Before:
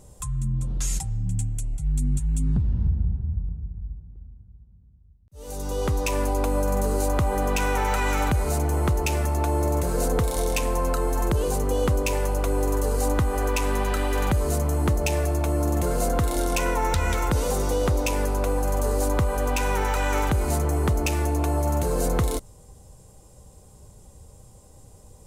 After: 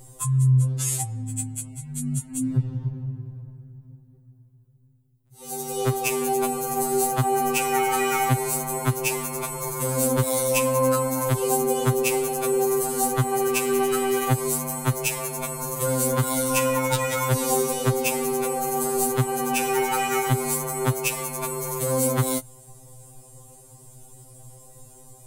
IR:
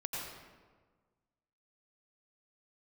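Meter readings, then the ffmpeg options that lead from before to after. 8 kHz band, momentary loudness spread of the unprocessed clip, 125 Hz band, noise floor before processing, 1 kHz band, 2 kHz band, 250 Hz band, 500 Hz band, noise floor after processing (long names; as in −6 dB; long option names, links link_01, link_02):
+7.0 dB, 4 LU, −0.5 dB, −51 dBFS, +2.5 dB, +1.5 dB, +0.5 dB, +2.5 dB, −51 dBFS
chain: -af "aexciter=amount=1.9:drive=7.6:freq=8000,afftfilt=real='re*2.45*eq(mod(b,6),0)':imag='im*2.45*eq(mod(b,6),0)':win_size=2048:overlap=0.75,volume=4.5dB"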